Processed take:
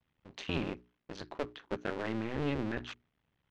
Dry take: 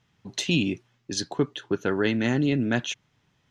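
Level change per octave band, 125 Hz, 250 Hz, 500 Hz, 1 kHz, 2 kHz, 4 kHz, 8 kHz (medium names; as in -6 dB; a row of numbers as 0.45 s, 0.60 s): -11.5 dB, -12.5 dB, -10.0 dB, -6.0 dB, -11.5 dB, -14.5 dB, -24.0 dB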